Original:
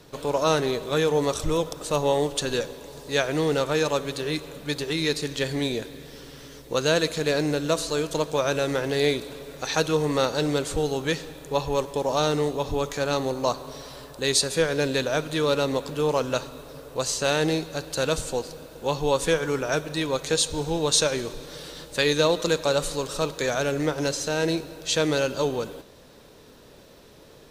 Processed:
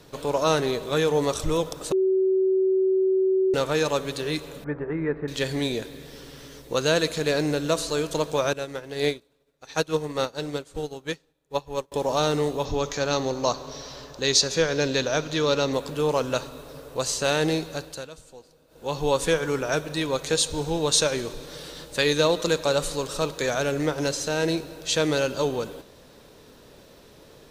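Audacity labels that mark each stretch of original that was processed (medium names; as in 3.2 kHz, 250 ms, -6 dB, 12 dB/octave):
1.920000	3.540000	bleep 379 Hz -18 dBFS
4.640000	5.280000	steep low-pass 1.8 kHz
8.530000	11.920000	upward expansion 2.5:1, over -41 dBFS
12.650000	15.730000	resonant high shelf 7.5 kHz -7.5 dB, Q 3
17.720000	19.030000	dip -18.5 dB, fades 0.36 s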